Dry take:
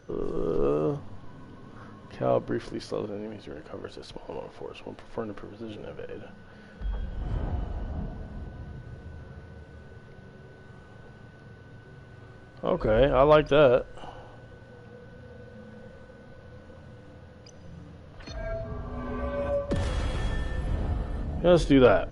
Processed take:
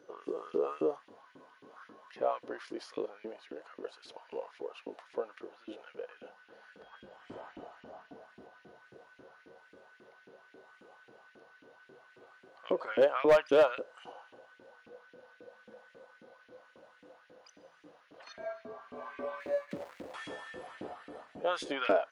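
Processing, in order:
0:19.40–0:20.14: running median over 41 samples
auto-filter high-pass saw up 3.7 Hz 270–2,500 Hz
hard clipping −10 dBFS, distortion −15 dB
level −7.5 dB

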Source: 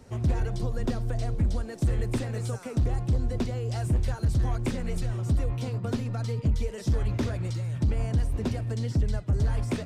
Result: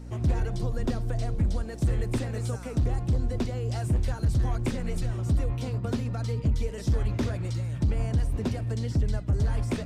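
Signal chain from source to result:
mains hum 60 Hz, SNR 14 dB

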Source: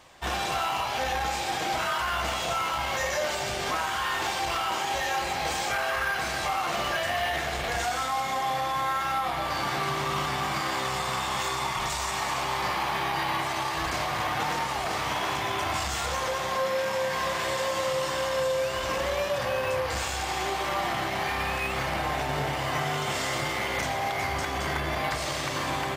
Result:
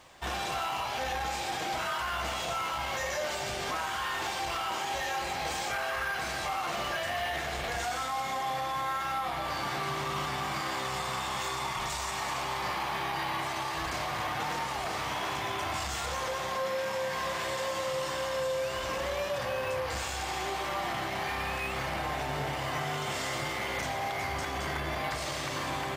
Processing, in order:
in parallel at +2 dB: brickwall limiter −27 dBFS, peak gain reduction 9 dB
on the sum: bit reduction 11 bits
level −8.5 dB

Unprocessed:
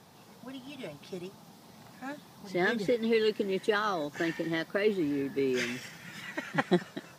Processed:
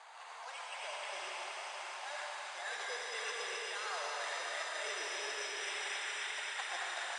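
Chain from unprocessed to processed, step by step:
bad sample-rate conversion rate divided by 8×, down none, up hold
inverse Chebyshev high-pass filter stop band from 280 Hz, stop band 50 dB
high-shelf EQ 3,300 Hz −5.5 dB
in parallel at −1.5 dB: output level in coarse steps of 10 dB
on the sum: transient designer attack +1 dB, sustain +6 dB
reversed playback
downward compressor 6 to 1, threshold −47 dBFS, peak gain reduction 24.5 dB
reversed playback
Butterworth low-pass 9,600 Hz 72 dB per octave
delay with a high-pass on its return 266 ms, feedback 82%, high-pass 1,700 Hz, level −6 dB
convolution reverb RT60 4.9 s, pre-delay 65 ms, DRR −3.5 dB
level +3.5 dB

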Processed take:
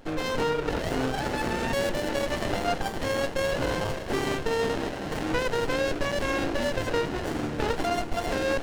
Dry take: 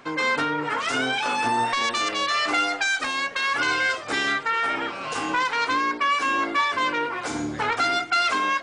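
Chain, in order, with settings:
mains-hum notches 60/120/180/240/300 Hz
feedback delay with all-pass diffusion 610 ms, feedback 47%, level −11.5 dB
windowed peak hold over 33 samples
level +1 dB

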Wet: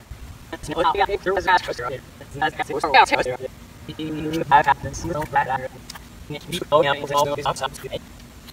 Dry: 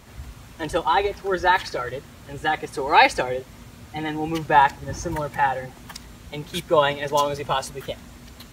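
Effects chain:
reversed piece by piece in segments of 105 ms
healed spectral selection 0:03.70–0:04.39, 560–2,200 Hz both
level +1.5 dB

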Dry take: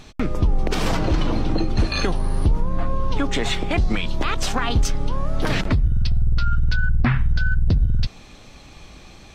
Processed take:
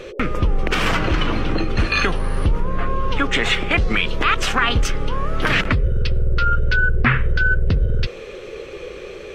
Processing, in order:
flat-topped bell 1,900 Hz +9.5 dB
noise in a band 350–550 Hz −35 dBFS

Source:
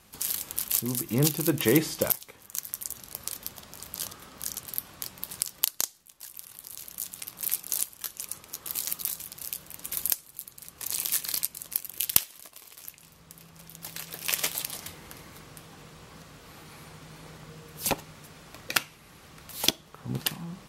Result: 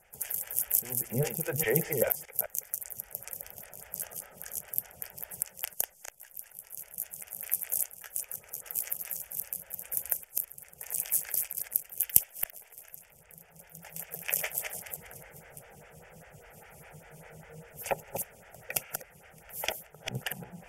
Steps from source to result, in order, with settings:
delay that plays each chunk backwards 205 ms, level −5 dB
phaser with its sweep stopped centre 1,100 Hz, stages 6
phaser with staggered stages 5 Hz
level +2 dB

